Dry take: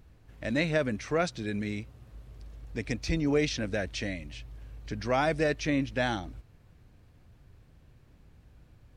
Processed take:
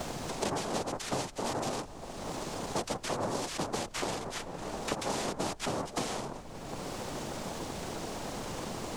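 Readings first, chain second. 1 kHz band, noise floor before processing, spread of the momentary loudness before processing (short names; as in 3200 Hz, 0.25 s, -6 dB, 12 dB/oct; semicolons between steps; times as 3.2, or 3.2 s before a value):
+2.0 dB, -59 dBFS, 19 LU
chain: tracing distortion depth 0.16 ms; HPF 130 Hz; tone controls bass -4 dB, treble -12 dB; in parallel at -1 dB: limiter -23.5 dBFS, peak gain reduction 9 dB; on the sum: compressor, threshold -30 dBFS, peak gain reduction 11 dB; noise vocoder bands 2; added noise brown -52 dBFS; three-band squash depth 100%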